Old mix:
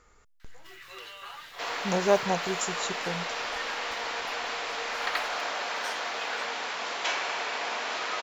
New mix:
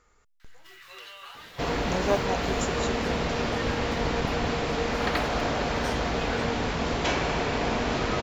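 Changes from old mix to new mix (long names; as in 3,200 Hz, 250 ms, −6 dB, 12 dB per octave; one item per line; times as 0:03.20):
speech −3.5 dB
second sound: remove high-pass filter 880 Hz 12 dB per octave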